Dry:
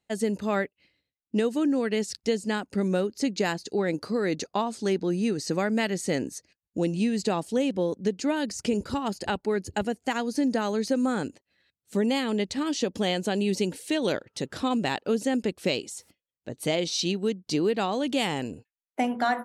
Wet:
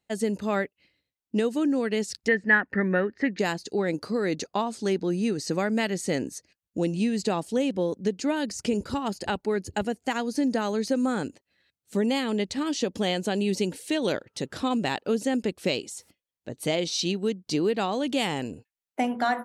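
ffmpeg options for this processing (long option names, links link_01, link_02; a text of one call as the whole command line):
ffmpeg -i in.wav -filter_complex "[0:a]asettb=1/sr,asplit=3[link_01][link_02][link_03];[link_01]atrim=end=2.284[link_04];[link_02]atrim=start=2.28:end=3.39,asetpts=PTS-STARTPTS,afade=type=in:duration=0.004:curve=qsin,afade=type=out:start_time=1.106:duration=0.004:curve=qsin,lowpass=frequency=1800:width_type=q:width=15[link_05];[link_03]atrim=start=3.386[link_06];[link_04][link_05]acrossfade=duration=0.004:curve1=hsin:curve2=qsin[link_07];[link_07][link_06]acrossfade=duration=0.004:curve1=qsin:curve2=hsin" out.wav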